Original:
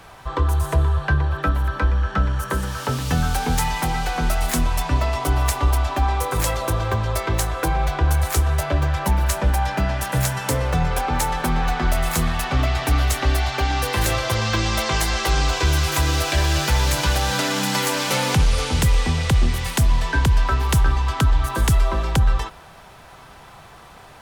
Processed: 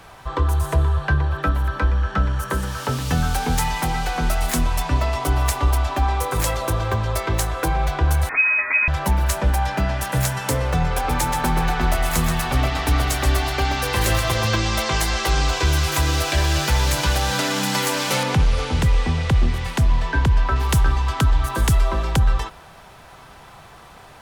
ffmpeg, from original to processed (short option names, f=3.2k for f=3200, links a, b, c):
-filter_complex "[0:a]asettb=1/sr,asplit=3[a][b][c];[a]atrim=end=8.294[d];[b]atrim=start=8.29:end=8.88,asetpts=PTS-STARTPTS,afade=t=in:d=0.004:c=qsin,afade=t=out:st=0.586:d=0.004:c=qsin,lowpass=f=2.2k:t=q:w=0.5098,lowpass=f=2.2k:t=q:w=0.6013,lowpass=f=2.2k:t=q:w=0.9,lowpass=f=2.2k:t=q:w=2.563,afreqshift=-2600[e];[c]atrim=start=8.876[f];[d][e]acrossfade=d=0.004:c1=hsin:c2=qsin[g];[g][f]acrossfade=d=0.004:c1=qsin:c2=hsin,asettb=1/sr,asplit=3[h][i][j];[h]atrim=end=10.914[k];[i]atrim=start=10.91:end=14.55,asetpts=PTS-STARTPTS,afade=t=in:d=0.004:c=qsin,afade=t=out:st=3.636:d=0.004:c=qsin,aecho=1:1:129|258|387|516:0.501|0.18|0.065|0.0234,atrim=end_sample=160524[l];[j]atrim=start=14.546[m];[k][l]acrossfade=d=0.004:c1=hsin:c2=qsin[n];[n][m]acrossfade=d=0.004:c1=qsin:c2=hsin,asettb=1/sr,asplit=3[o][p][q];[o]atrim=end=18.234[r];[p]atrim=start=18.23:end=20.56,asetpts=PTS-STARTPTS,afade=t=in:d=0.004:c=qsin,afade=t=out:st=2.326:d=0.004:c=qsin,lowpass=f=2.9k:p=1[s];[q]atrim=start=20.556[t];[r][s]acrossfade=d=0.004:c1=hsin:c2=qsin[u];[u][t]acrossfade=d=0.004:c1=qsin:c2=hsin"